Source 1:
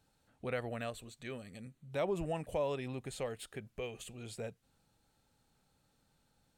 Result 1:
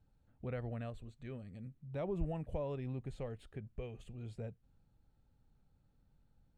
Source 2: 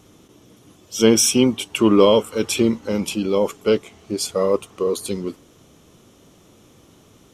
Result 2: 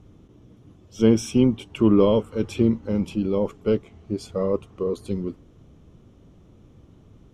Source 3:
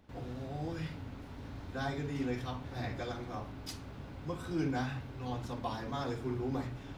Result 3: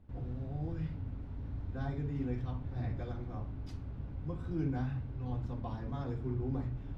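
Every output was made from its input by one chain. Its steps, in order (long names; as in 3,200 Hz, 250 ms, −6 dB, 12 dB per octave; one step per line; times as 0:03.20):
RIAA equalisation playback
level −8 dB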